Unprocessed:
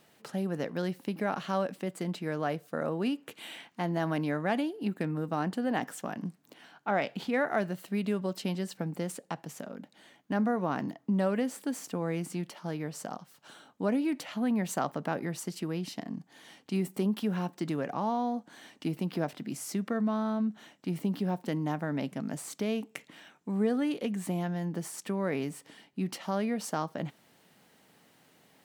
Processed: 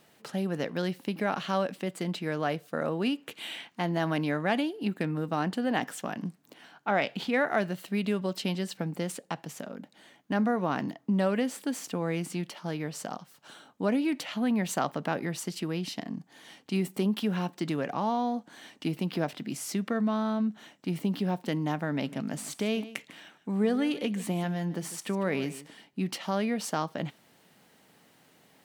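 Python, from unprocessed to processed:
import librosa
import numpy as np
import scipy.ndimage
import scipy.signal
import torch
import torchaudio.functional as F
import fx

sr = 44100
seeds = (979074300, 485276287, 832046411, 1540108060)

y = fx.echo_single(x, sr, ms=150, db=-15.5, at=(21.9, 25.68))
y = fx.dynamic_eq(y, sr, hz=3200.0, q=0.9, threshold_db=-54.0, ratio=4.0, max_db=5)
y = F.gain(torch.from_numpy(y), 1.5).numpy()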